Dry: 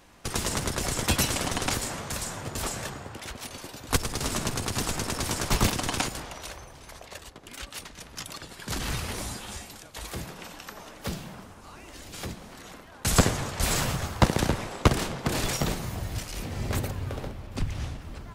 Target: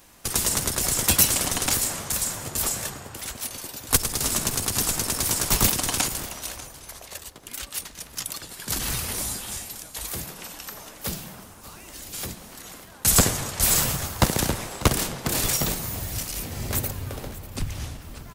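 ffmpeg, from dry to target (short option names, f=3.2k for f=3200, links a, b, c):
-af "aemphasis=mode=production:type=50fm,aecho=1:1:593:0.141"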